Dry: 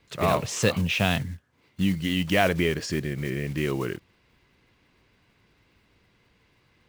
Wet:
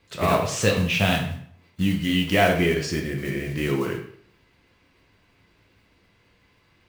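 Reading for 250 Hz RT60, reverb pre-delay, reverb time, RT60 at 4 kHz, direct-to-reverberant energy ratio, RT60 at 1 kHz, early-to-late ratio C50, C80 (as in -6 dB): 0.65 s, 4 ms, 0.60 s, 0.50 s, 0.5 dB, 0.60 s, 6.5 dB, 10.0 dB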